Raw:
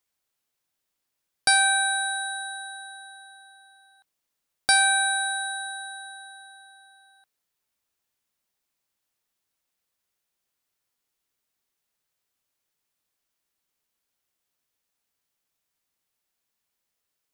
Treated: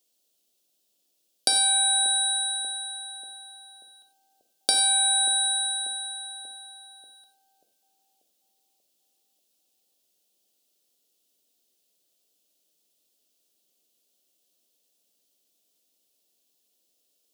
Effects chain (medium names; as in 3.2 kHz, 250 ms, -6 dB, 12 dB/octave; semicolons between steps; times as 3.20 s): high-pass 200 Hz 24 dB/octave; high-order bell 1.4 kHz -15.5 dB; compression 6:1, threshold -29 dBFS, peak gain reduction 10.5 dB; on a send: bucket-brigade echo 587 ms, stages 4096, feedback 51%, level -13.5 dB; on the sum: gated-style reverb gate 120 ms flat, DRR 6 dB; trim +8.5 dB